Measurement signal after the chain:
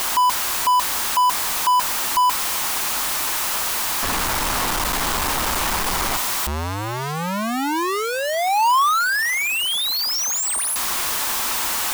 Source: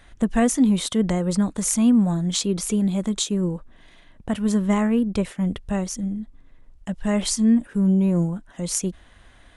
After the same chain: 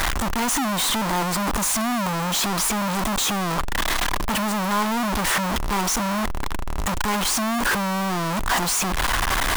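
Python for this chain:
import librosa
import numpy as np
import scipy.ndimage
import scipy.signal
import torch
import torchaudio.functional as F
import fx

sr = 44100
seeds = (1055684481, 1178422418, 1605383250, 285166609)

y = np.sign(x) * np.sqrt(np.mean(np.square(x)))
y = fx.graphic_eq(y, sr, hz=(125, 500, 1000), db=(-8, -4, 9))
y = fx.quant_dither(y, sr, seeds[0], bits=6, dither='none')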